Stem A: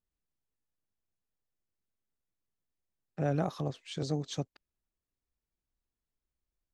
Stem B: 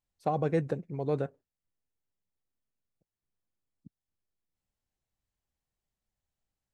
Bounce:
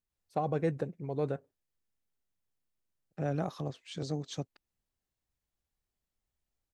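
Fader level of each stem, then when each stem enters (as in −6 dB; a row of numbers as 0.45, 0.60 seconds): −2.5, −2.5 decibels; 0.00, 0.10 seconds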